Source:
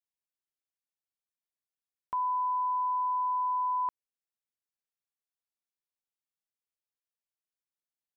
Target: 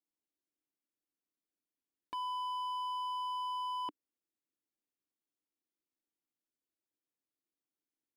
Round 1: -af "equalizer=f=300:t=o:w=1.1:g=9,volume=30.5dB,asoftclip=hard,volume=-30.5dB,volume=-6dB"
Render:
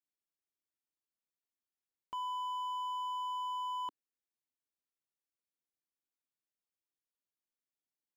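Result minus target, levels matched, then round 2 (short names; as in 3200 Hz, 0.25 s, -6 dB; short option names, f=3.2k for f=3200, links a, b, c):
250 Hz band -9.0 dB
-af "equalizer=f=300:t=o:w=1.1:g=20.5,volume=30.5dB,asoftclip=hard,volume=-30.5dB,volume=-6dB"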